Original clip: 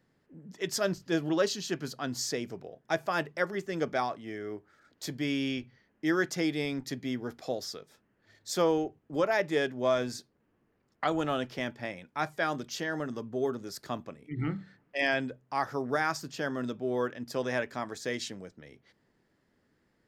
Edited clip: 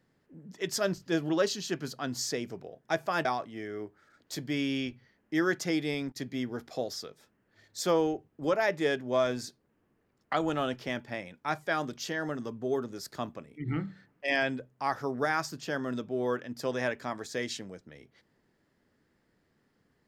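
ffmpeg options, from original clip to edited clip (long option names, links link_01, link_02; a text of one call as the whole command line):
ffmpeg -i in.wav -filter_complex "[0:a]asplit=4[link_01][link_02][link_03][link_04];[link_01]atrim=end=3.252[link_05];[link_02]atrim=start=3.958:end=6.83,asetpts=PTS-STARTPTS,afade=type=out:start_time=2.622:duration=0.25:curve=log:silence=0.177828[link_06];[link_03]atrim=start=6.83:end=6.87,asetpts=PTS-STARTPTS,volume=-15dB[link_07];[link_04]atrim=start=6.87,asetpts=PTS-STARTPTS,afade=type=in:duration=0.25:curve=log:silence=0.177828[link_08];[link_06][link_07][link_08]concat=n=3:v=0:a=1[link_09];[link_05][link_09]acrossfade=duration=0.004:curve1=hsin:curve2=hsin" out.wav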